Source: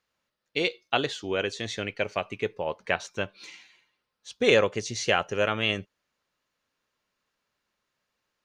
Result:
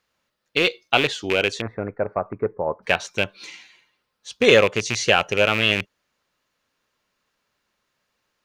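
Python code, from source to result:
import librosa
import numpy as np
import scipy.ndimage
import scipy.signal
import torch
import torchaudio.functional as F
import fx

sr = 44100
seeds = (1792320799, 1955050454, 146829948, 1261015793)

y = fx.rattle_buzz(x, sr, strikes_db=-37.0, level_db=-17.0)
y = fx.cheby2_lowpass(y, sr, hz=2800.0, order=4, stop_db=40, at=(1.6, 2.82), fade=0.02)
y = y * librosa.db_to_amplitude(6.0)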